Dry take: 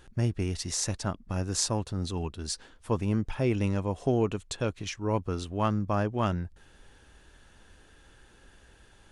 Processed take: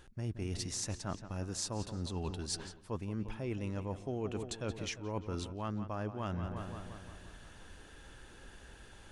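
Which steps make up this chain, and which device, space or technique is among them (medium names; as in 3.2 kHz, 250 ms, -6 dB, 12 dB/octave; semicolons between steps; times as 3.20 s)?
filtered feedback delay 175 ms, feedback 60%, low-pass 4.8 kHz, level -14 dB; compression on the reversed sound (reverse; compression 6:1, threshold -38 dBFS, peak gain reduction 16 dB; reverse); trim +2.5 dB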